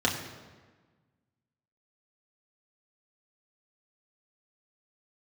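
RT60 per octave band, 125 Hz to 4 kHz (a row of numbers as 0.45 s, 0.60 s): 1.8 s, 1.7 s, 1.4 s, 1.4 s, 1.2 s, 1.0 s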